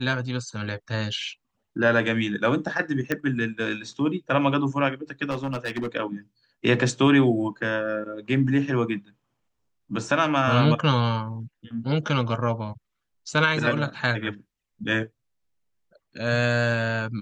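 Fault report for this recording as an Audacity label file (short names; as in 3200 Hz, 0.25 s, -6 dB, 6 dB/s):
3.120000	3.120000	pop -11 dBFS
5.300000	5.880000	clipped -24 dBFS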